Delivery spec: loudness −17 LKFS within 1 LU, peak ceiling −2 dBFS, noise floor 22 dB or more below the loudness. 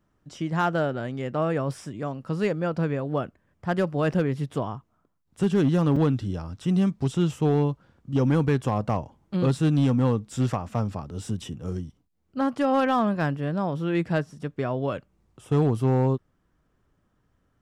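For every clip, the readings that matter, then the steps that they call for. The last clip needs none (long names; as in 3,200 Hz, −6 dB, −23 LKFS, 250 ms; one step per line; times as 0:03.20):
share of clipped samples 1.0%; peaks flattened at −15.5 dBFS; number of dropouts 2; longest dropout 4.4 ms; integrated loudness −26.0 LKFS; sample peak −15.5 dBFS; target loudness −17.0 LKFS
→ clipped peaks rebuilt −15.5 dBFS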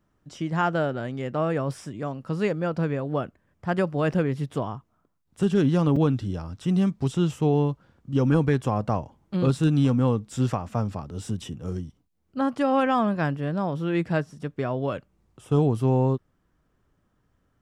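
share of clipped samples 0.0%; number of dropouts 2; longest dropout 4.4 ms
→ repair the gap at 0:04.13/0:05.96, 4.4 ms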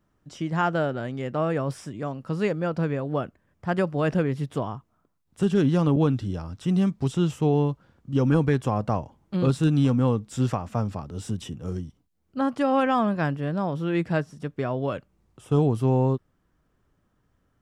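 number of dropouts 0; integrated loudness −25.5 LKFS; sample peak −9.5 dBFS; target loudness −17.0 LKFS
→ level +8.5 dB
brickwall limiter −2 dBFS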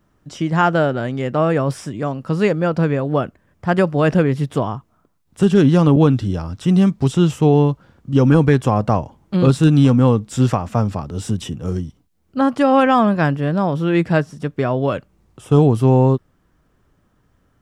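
integrated loudness −17.0 LKFS; sample peak −2.0 dBFS; background noise floor −62 dBFS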